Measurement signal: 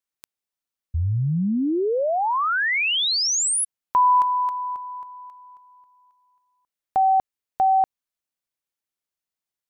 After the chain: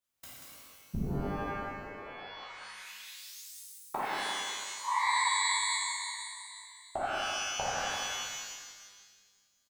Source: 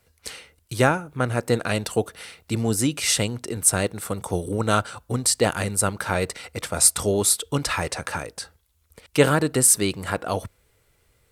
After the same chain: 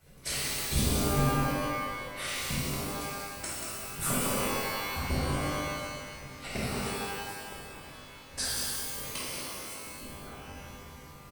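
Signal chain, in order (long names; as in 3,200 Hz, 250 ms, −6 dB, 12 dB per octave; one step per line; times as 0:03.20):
parametric band 93 Hz +13 dB 0.28 octaves
random phases in short frames
gate with flip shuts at −19 dBFS, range −36 dB
repeating echo 185 ms, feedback 32%, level −5.5 dB
reverb with rising layers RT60 1.5 s, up +12 semitones, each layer −2 dB, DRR −9 dB
level −3.5 dB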